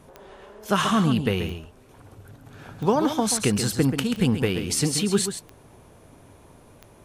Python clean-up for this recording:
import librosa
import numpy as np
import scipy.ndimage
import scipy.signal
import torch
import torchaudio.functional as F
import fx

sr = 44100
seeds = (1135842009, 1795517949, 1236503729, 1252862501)

y = fx.fix_declip(x, sr, threshold_db=-9.5)
y = fx.fix_declick_ar(y, sr, threshold=10.0)
y = fx.fix_echo_inverse(y, sr, delay_ms=133, level_db=-9.0)